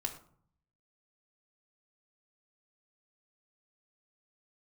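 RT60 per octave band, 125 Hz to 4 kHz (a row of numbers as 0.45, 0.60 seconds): 0.95, 0.80, 0.55, 0.55, 0.40, 0.30 seconds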